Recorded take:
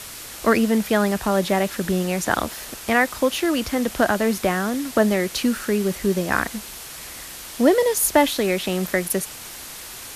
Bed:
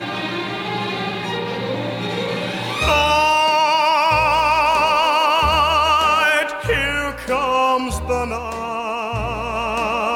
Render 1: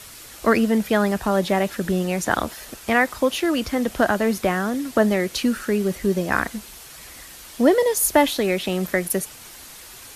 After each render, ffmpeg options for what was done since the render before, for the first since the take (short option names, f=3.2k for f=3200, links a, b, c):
-af "afftdn=nr=6:nf=-37"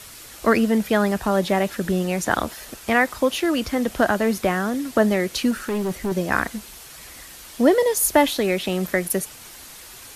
-filter_complex "[0:a]asettb=1/sr,asplit=3[a][b][c];[a]atrim=end=5.514[d];[b]atrim=start=5.51:end=6.12,asetpts=PTS-STARTPTS,afade=t=in:d=0.004:c=qsin,afade=t=out:st=0.606:d=0.004:c=qsin,volume=20.5dB,asoftclip=hard,volume=-20.5dB[e];[c]atrim=start=6.116[f];[d][e]acrossfade=d=0.004:c1=hsin:c2=qsin[g];[g][f]acrossfade=d=0.004:c1=qsin:c2=hsin"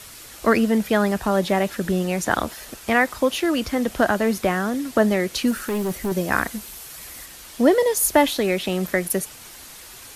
-filter_complex "[0:a]asettb=1/sr,asplit=3[a][b][c];[a]atrim=end=5.474[d];[b]atrim=start=5.47:end=7.26,asetpts=PTS-STARTPTS,afade=t=in:d=0.004:c=qsin,afade=t=out:st=1.786:d=0.004:c=qsin,highshelf=f=11k:g=9.5[e];[c]atrim=start=7.256[f];[d][e]acrossfade=d=0.004:c1=hsin:c2=qsin[g];[g][f]acrossfade=d=0.004:c1=qsin:c2=hsin"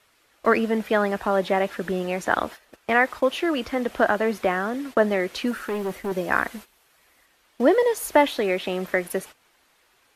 -af "agate=range=-15dB:threshold=-33dB:ratio=16:detection=peak,bass=f=250:g=-10,treble=f=4k:g=-12"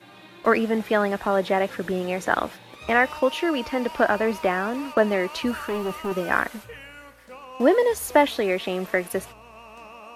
-filter_complex "[1:a]volume=-23dB[a];[0:a][a]amix=inputs=2:normalize=0"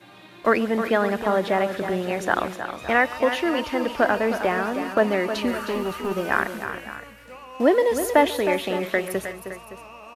-af "aecho=1:1:139|313|366|565:0.1|0.335|0.1|0.178"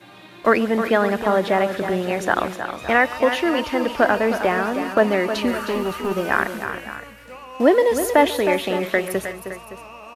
-af "volume=3dB,alimiter=limit=-3dB:level=0:latency=1"